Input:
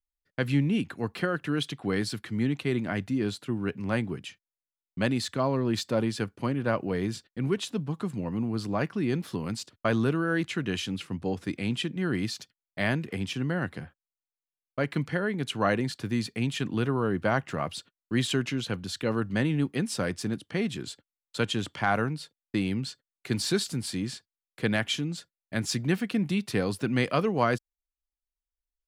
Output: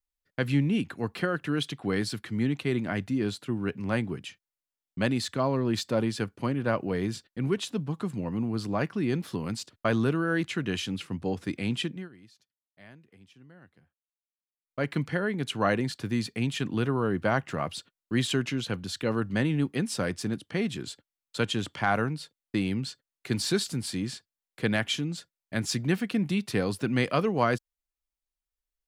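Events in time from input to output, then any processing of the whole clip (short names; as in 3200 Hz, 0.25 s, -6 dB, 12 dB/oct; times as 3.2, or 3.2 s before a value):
11.86–14.85 dip -24 dB, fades 0.23 s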